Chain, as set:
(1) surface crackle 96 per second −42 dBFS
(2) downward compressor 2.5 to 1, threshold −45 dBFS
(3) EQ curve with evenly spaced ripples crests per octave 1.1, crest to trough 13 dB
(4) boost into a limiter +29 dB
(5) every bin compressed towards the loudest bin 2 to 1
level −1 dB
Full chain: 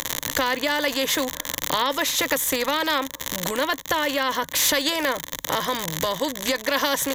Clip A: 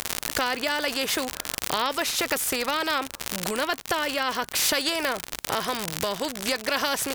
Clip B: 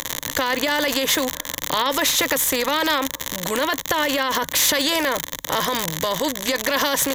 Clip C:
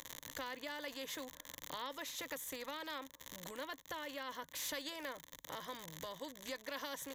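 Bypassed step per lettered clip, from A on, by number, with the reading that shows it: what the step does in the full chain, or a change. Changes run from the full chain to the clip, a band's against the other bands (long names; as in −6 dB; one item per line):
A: 3, change in crest factor +3.0 dB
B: 2, average gain reduction 8.5 dB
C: 4, change in integrated loudness −21.5 LU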